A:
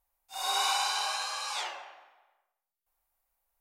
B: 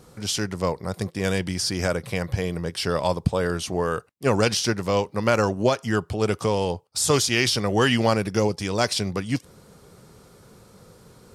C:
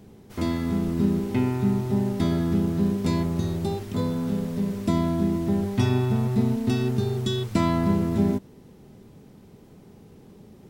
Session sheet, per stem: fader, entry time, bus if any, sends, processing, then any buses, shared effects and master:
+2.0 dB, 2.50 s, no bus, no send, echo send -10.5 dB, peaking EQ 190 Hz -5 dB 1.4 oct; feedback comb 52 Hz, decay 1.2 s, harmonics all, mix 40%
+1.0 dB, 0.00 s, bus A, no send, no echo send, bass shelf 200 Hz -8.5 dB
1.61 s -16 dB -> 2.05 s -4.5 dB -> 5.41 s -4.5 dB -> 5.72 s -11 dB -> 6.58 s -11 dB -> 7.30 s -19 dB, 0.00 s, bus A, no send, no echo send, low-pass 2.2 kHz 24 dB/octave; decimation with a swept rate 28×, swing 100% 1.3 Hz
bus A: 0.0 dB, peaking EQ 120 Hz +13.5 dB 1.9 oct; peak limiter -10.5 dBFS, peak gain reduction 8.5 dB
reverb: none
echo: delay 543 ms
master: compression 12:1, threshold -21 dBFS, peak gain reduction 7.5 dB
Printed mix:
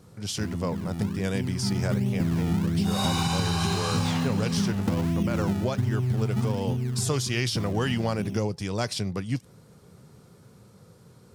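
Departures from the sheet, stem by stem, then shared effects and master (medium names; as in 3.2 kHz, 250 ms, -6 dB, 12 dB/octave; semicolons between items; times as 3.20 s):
stem A +2.0 dB -> +9.0 dB; stem B +1.0 dB -> -6.5 dB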